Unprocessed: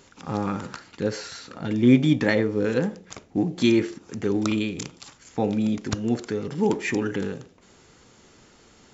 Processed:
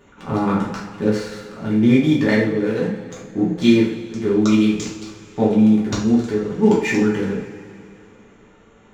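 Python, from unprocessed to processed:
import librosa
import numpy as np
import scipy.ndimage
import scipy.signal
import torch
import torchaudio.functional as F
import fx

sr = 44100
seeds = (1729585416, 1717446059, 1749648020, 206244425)

p1 = fx.wiener(x, sr, points=9)
p2 = fx.backlash(p1, sr, play_db=-27.5)
p3 = p1 + (p2 * 10.0 ** (-8.5 / 20.0))
p4 = fx.rider(p3, sr, range_db=5, speed_s=2.0)
p5 = fx.rev_double_slope(p4, sr, seeds[0], early_s=0.45, late_s=2.9, knee_db=-18, drr_db=-6.0)
y = p5 * 10.0 ** (-5.0 / 20.0)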